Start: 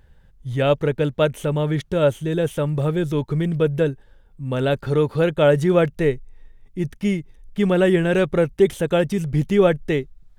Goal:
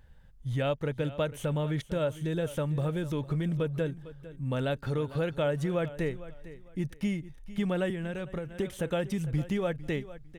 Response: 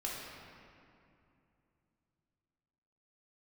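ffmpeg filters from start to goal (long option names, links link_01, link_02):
-filter_complex "[0:a]acompressor=threshold=-23dB:ratio=3,equalizer=frequency=390:width=3.7:gain=-6,asplit=2[link_01][link_02];[link_02]aecho=0:1:453|906:0.158|0.0396[link_03];[link_01][link_03]amix=inputs=2:normalize=0,asettb=1/sr,asplit=3[link_04][link_05][link_06];[link_04]atrim=end=7.904[link_07];[link_05]atrim=start=7.9:end=8.49,asetpts=PTS-STARTPTS,afade=type=in:duration=0.004:curve=qsin,afade=type=out:start_time=0.586:duration=0.004:curve=qsin,acrossover=split=140[link_08][link_09];[link_09]acompressor=threshold=-30dB:ratio=6[link_10];[link_08][link_10]amix=inputs=2:normalize=0[link_11];[link_06]atrim=start=8.486[link_12];[link_07][link_11]acrossfade=duration=0.004:curve1=hsin:curve2=qsin[link_13];[link_13][link_12]acrossfade=duration=0.004:curve1=qsin:curve2=hsin,volume=-4dB"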